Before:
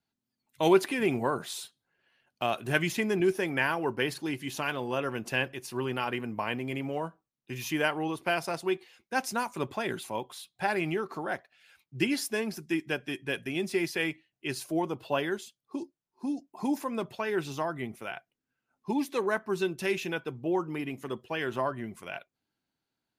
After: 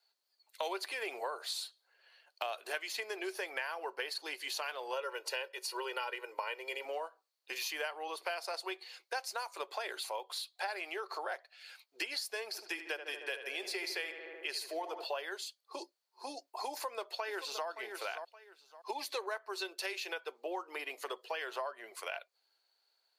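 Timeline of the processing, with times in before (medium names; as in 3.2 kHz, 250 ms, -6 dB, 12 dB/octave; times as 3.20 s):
4.93–6.85 s: comb 2.1 ms, depth 83%
12.47–15.04 s: filtered feedback delay 75 ms, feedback 73%, low-pass 2.5 kHz, level -9.5 dB
16.70–17.67 s: echo throw 570 ms, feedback 15%, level -12.5 dB
whole clip: steep high-pass 460 Hz 36 dB/octave; peaking EQ 4.4 kHz +13.5 dB 0.24 oct; compression 5:1, threshold -42 dBFS; trim +5 dB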